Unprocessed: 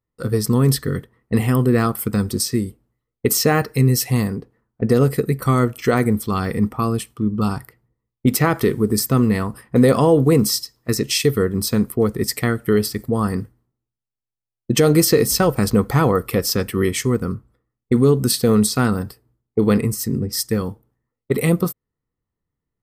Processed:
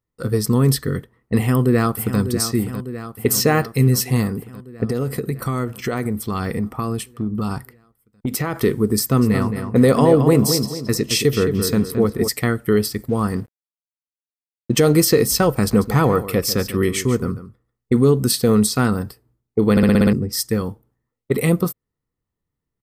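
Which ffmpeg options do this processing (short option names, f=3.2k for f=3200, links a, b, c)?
-filter_complex "[0:a]asplit=2[a][b];[b]afade=t=in:st=1.37:d=0.01,afade=t=out:st=2.2:d=0.01,aecho=0:1:600|1200|1800|2400|3000|3600|4200|4800|5400|6000:0.298538|0.208977|0.146284|0.102399|0.071679|0.0501753|0.0351227|0.0245859|0.0172101|0.0120471[c];[a][c]amix=inputs=2:normalize=0,asettb=1/sr,asplit=3[d][e][f];[d]atrim=end=4.844[g];[e]atrim=start=4.84:end=8.6,asetpts=PTS-STARTPTS,afade=t=in:d=0.004:c=qsin,afade=t=out:st=3.756:d=0.004:c=qsin,acompressor=threshold=-18dB:ratio=6:attack=3.2:release=140:knee=1:detection=peak[h];[f]atrim=start=8.596[i];[g][h]acrossfade=d=0.004:c1=hsin:c2=qsin[j];[j][i]acrossfade=d=0.004:c1=qsin:c2=hsin,asplit=3[k][l][m];[k]afade=t=out:st=9.21:d=0.02[n];[l]asplit=2[o][p];[p]adelay=220,lowpass=f=3k:p=1,volume=-7dB,asplit=2[q][r];[r]adelay=220,lowpass=f=3k:p=1,volume=0.39,asplit=2[s][t];[t]adelay=220,lowpass=f=3k:p=1,volume=0.39,asplit=2[u][v];[v]adelay=220,lowpass=f=3k:p=1,volume=0.39,asplit=2[w][x];[x]adelay=220,lowpass=f=3k:p=1,volume=0.39[y];[o][q][s][u][w][y]amix=inputs=6:normalize=0,afade=t=in:st=9.21:d=0.02,afade=t=out:st=12.27:d=0.02[z];[m]afade=t=in:st=12.27:d=0.02[aa];[n][z][aa]amix=inputs=3:normalize=0,asettb=1/sr,asplit=3[ab][ac][ad];[ab]atrim=end=13.084[ae];[ac]atrim=start=13.08:end=15.06,asetpts=PTS-STARTPTS,afade=t=in:d=0.004:c=qsin,afade=t=out:st=1.976:d=0.004:c=qsin,aeval=exprs='sgn(val(0))*max(abs(val(0))-0.00562,0)':c=same[af];[ad]atrim=start=15.056[ag];[ae][af]acrossfade=d=0.004:c1=hsin:c2=qsin[ah];[ah][ag]acrossfade=d=0.004:c1=qsin:c2=hsin,asplit=3[ai][aj][ak];[ai]afade=t=out:st=15.65:d=0.02[al];[aj]aecho=1:1:143:0.211,afade=t=in:st=15.65:d=0.02,afade=t=out:st=17.99:d=0.02[am];[ak]afade=t=in:st=17.99:d=0.02[an];[al][am][an]amix=inputs=3:normalize=0,asplit=8[ao][ap][aq][ar][as][at][au][av];[ao]atrim=end=19.772[aw];[ap]atrim=start=19.708:end=19.772[ax];[aq]atrim=start=19.708:end=19.772[ay];[ar]atrim=start=19.708:end=19.772[az];[as]atrim=start=19.708:end=19.772[ba];[at]atrim=start=19.708:end=19.772[bb];[au]atrim=start=19.708:end=19.772[bc];[av]atrim=start=20.128[bd];[aw][ax]acrossfade=d=0.004:c1=hsin:c2=hsin[be];[be][ay]acrossfade=d=0.004:c1=hsin:c2=hsin[bf];[bf][az]acrossfade=d=0.004:c1=hsin:c2=hsin[bg];[bg][ba]acrossfade=d=0.004:c1=hsin:c2=hsin[bh];[bh][bb]acrossfade=d=0.004:c1=hsin:c2=hsin[bi];[bi][bc]acrossfade=d=0.004:c1=hsin:c2=hsin[bj];[bj][bd]acrossfade=d=0.004:c1=hsin:c2=hsin"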